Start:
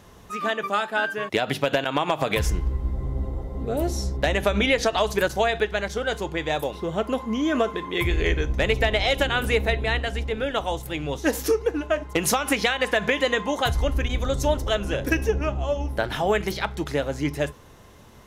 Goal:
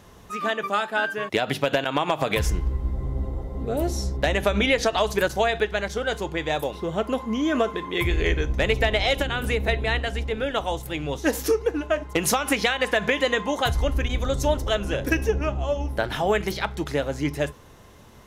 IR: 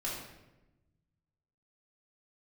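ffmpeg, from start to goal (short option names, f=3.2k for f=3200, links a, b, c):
-filter_complex "[0:a]asettb=1/sr,asplit=3[a][b][c];[a]atrim=end=9.154[d];[b]atrim=start=9.15:end=9.68,asetpts=PTS-STARTPTS,afade=t=in:d=0.004:c=qsin,afade=t=out:st=0.526:d=0.004:c=qsin,acrossover=split=300[e][f];[f]acompressor=threshold=-23dB:ratio=6[g];[e][g]amix=inputs=2:normalize=0[h];[c]atrim=start=9.676[i];[d][h]acrossfade=d=0.004:c1=hsin:c2=qsin[j];[j][i]acrossfade=d=0.004:c1=qsin:c2=hsin"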